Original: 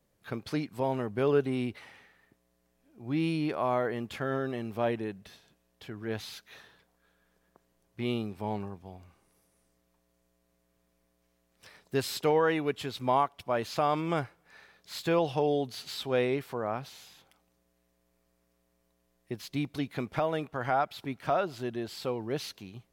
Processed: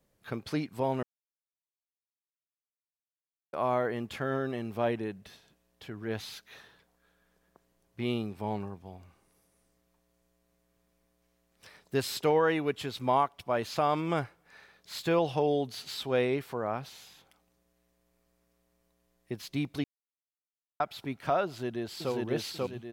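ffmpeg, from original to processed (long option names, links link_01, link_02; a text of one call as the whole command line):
ffmpeg -i in.wav -filter_complex "[0:a]asplit=2[link_01][link_02];[link_02]afade=type=in:start_time=21.46:duration=0.01,afade=type=out:start_time=22.12:duration=0.01,aecho=0:1:540|1080|1620|2160|2700:0.944061|0.377624|0.15105|0.0604199|0.024168[link_03];[link_01][link_03]amix=inputs=2:normalize=0,asplit=5[link_04][link_05][link_06][link_07][link_08];[link_04]atrim=end=1.03,asetpts=PTS-STARTPTS,afade=type=out:start_time=1.026:duration=0.004:curve=hsin[link_09];[link_05]atrim=start=1.03:end=3.53,asetpts=PTS-STARTPTS,volume=0[link_10];[link_06]atrim=start=3.53:end=19.84,asetpts=PTS-STARTPTS,afade=type=in:duration=0.004:curve=hsin,afade=type=out:start_time=16.306:duration=0.004:curve=hsin[link_11];[link_07]atrim=start=19.84:end=20.8,asetpts=PTS-STARTPTS,volume=0[link_12];[link_08]atrim=start=20.8,asetpts=PTS-STARTPTS,afade=type=in:duration=0.004:curve=hsin[link_13];[link_09][link_10][link_11][link_12][link_13]concat=n=5:v=0:a=1" out.wav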